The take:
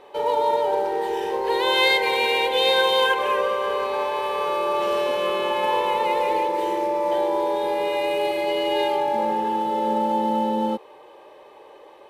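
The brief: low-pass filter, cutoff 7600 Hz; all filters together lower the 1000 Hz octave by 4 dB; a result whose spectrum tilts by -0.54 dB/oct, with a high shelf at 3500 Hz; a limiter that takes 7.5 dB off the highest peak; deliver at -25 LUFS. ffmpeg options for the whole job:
-af "lowpass=7.6k,equalizer=f=1k:t=o:g=-5,highshelf=f=3.5k:g=4.5,volume=-0.5dB,alimiter=limit=-15dB:level=0:latency=1"

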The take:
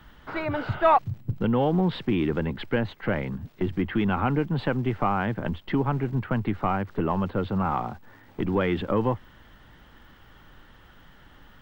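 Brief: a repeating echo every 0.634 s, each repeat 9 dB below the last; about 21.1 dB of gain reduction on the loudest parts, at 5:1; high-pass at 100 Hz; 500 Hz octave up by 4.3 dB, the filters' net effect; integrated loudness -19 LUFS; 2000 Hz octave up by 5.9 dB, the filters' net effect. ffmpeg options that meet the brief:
-af "highpass=100,equalizer=f=500:t=o:g=5,equalizer=f=2k:t=o:g=7.5,acompressor=threshold=-36dB:ratio=5,aecho=1:1:634|1268|1902|2536:0.355|0.124|0.0435|0.0152,volume=20dB"

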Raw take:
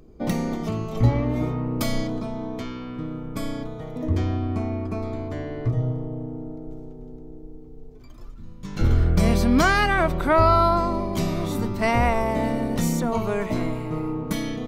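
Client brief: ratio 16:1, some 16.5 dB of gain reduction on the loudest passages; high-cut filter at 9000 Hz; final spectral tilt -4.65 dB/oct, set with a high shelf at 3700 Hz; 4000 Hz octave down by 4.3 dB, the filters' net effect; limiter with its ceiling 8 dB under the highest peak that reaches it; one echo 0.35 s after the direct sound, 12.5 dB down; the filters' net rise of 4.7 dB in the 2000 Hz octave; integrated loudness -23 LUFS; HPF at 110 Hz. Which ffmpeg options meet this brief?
-af "highpass=110,lowpass=9k,equalizer=f=2k:t=o:g=8.5,highshelf=f=3.7k:g=-4,equalizer=f=4k:t=o:g=-7,acompressor=threshold=-29dB:ratio=16,alimiter=level_in=3dB:limit=-24dB:level=0:latency=1,volume=-3dB,aecho=1:1:350:0.237,volume=13dB"

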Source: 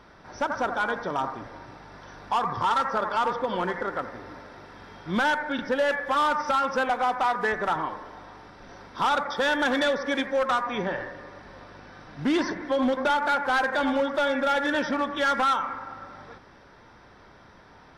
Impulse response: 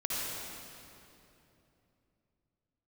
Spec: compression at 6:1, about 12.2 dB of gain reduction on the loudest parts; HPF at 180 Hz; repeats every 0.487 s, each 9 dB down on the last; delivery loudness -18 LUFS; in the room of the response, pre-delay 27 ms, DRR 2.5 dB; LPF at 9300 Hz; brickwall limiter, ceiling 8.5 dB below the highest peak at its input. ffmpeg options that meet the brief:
-filter_complex "[0:a]highpass=180,lowpass=9.3k,acompressor=threshold=-34dB:ratio=6,alimiter=level_in=5.5dB:limit=-24dB:level=0:latency=1,volume=-5.5dB,aecho=1:1:487|974|1461|1948:0.355|0.124|0.0435|0.0152,asplit=2[a][b];[1:a]atrim=start_sample=2205,adelay=27[c];[b][c]afir=irnorm=-1:irlink=0,volume=-9dB[d];[a][d]amix=inputs=2:normalize=0,volume=18.5dB"

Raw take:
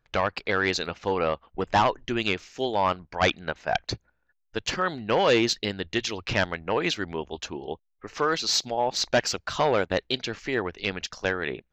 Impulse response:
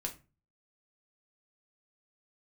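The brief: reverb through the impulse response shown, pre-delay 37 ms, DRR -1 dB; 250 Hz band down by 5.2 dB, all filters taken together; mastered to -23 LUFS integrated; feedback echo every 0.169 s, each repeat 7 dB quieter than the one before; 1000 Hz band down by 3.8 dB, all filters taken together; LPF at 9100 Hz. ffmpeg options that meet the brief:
-filter_complex "[0:a]lowpass=9.1k,equalizer=f=250:t=o:g=-7.5,equalizer=f=1k:t=o:g=-4.5,aecho=1:1:169|338|507|676|845:0.447|0.201|0.0905|0.0407|0.0183,asplit=2[a][b];[1:a]atrim=start_sample=2205,adelay=37[c];[b][c]afir=irnorm=-1:irlink=0,volume=1dB[d];[a][d]amix=inputs=2:normalize=0,volume=1dB"

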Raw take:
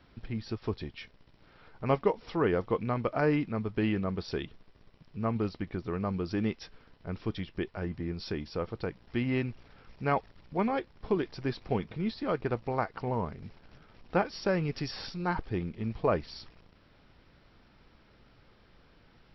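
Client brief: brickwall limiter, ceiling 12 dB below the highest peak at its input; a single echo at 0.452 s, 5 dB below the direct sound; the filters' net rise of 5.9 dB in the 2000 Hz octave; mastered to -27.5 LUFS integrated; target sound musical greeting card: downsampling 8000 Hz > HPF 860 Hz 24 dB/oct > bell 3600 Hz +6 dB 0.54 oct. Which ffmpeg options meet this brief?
-af "equalizer=f=2k:t=o:g=7,alimiter=limit=-23.5dB:level=0:latency=1,aecho=1:1:452:0.562,aresample=8000,aresample=44100,highpass=f=860:w=0.5412,highpass=f=860:w=1.3066,equalizer=f=3.6k:t=o:w=0.54:g=6,volume=14dB"

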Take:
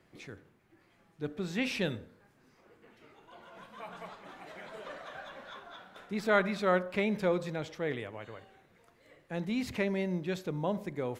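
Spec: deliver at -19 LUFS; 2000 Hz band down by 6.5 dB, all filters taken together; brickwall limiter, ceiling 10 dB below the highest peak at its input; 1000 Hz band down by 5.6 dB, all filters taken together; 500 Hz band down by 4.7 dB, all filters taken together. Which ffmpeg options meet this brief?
-af "equalizer=f=500:t=o:g=-4.5,equalizer=f=1k:t=o:g=-4,equalizer=f=2k:t=o:g=-7,volume=21dB,alimiter=limit=-7.5dB:level=0:latency=1"

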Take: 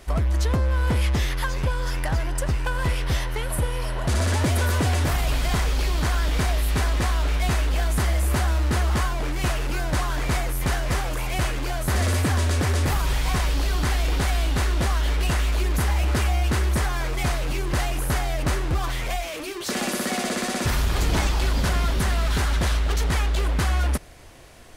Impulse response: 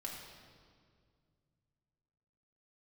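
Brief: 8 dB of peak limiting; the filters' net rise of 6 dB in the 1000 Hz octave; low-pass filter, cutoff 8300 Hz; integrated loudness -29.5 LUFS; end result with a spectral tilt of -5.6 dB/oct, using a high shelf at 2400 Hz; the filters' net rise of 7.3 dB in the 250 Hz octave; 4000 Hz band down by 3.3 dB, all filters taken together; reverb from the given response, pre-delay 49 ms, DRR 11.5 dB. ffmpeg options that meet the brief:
-filter_complex "[0:a]lowpass=8.3k,equalizer=f=250:t=o:g=9,equalizer=f=1k:t=o:g=7,highshelf=f=2.4k:g=3,equalizer=f=4k:t=o:g=-7.5,alimiter=limit=-14dB:level=0:latency=1,asplit=2[a][b];[1:a]atrim=start_sample=2205,adelay=49[c];[b][c]afir=irnorm=-1:irlink=0,volume=-10.5dB[d];[a][d]amix=inputs=2:normalize=0,volume=-5.5dB"

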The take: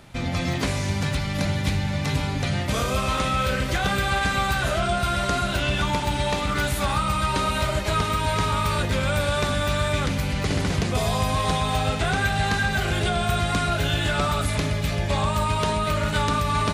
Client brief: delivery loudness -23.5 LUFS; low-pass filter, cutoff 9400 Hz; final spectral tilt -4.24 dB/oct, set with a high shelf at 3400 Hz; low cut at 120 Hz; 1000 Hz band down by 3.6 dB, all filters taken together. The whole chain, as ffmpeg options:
-af "highpass=120,lowpass=9.4k,equalizer=f=1k:t=o:g=-4,highshelf=f=3.4k:g=-7.5,volume=3.5dB"

